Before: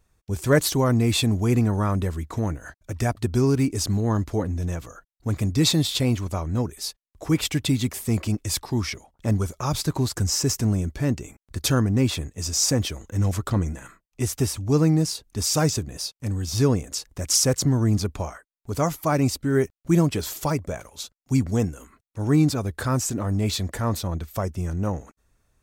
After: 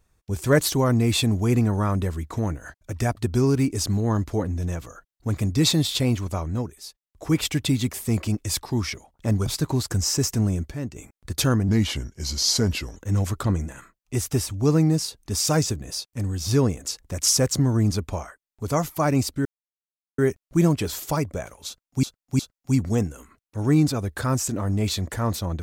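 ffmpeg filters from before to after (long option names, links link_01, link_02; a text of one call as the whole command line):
ffmpeg -i in.wav -filter_complex "[0:a]asplit=11[link_01][link_02][link_03][link_04][link_05][link_06][link_07][link_08][link_09][link_10][link_11];[link_01]atrim=end=6.81,asetpts=PTS-STARTPTS,afade=type=out:start_time=6.44:duration=0.37:silence=0.354813[link_12];[link_02]atrim=start=6.81:end=6.94,asetpts=PTS-STARTPTS,volume=-9dB[link_13];[link_03]atrim=start=6.94:end=9.462,asetpts=PTS-STARTPTS,afade=type=in:duration=0.37:silence=0.354813[link_14];[link_04]atrim=start=9.718:end=10.972[link_15];[link_05]atrim=start=10.968:end=11.222,asetpts=PTS-STARTPTS,volume=-7.5dB[link_16];[link_06]atrim=start=11.218:end=11.944[link_17];[link_07]atrim=start=11.94:end=13.03,asetpts=PTS-STARTPTS,asetrate=37485,aresample=44100[link_18];[link_08]atrim=start=13.026:end=19.52,asetpts=PTS-STARTPTS,afade=type=out:start_time=6.49:duration=0.004:curve=hsin,apad=pad_dur=0.73[link_19];[link_09]atrim=start=19.52:end=21.372,asetpts=PTS-STARTPTS,afade=type=in:duration=0.004:curve=hsin[link_20];[link_10]atrim=start=21.008:end=21.372[link_21];[link_11]atrim=start=21.008[link_22];[link_12][link_13][link_14]concat=n=3:v=0:a=1[link_23];[link_23][link_15]acrossfade=duration=0.004:curve1=hsin:curve2=hsin[link_24];[link_24][link_16]acrossfade=duration=0.004:curve1=hsin:curve2=hsin[link_25];[link_25][link_17]acrossfade=duration=0.004:curve1=hsin:curve2=hsin[link_26];[link_26][link_18]acrossfade=duration=0.004:curve1=hsin:curve2=hsin[link_27];[link_19][link_20]concat=n=2:v=0:a=1[link_28];[link_27][link_28]acrossfade=duration=0.004:curve1=hsin:curve2=hsin[link_29];[link_29][link_21]acrossfade=duration=0.004:curve1=hsin:curve2=hsin[link_30];[link_30][link_22]acrossfade=duration=0.004:curve1=hsin:curve2=hsin" out.wav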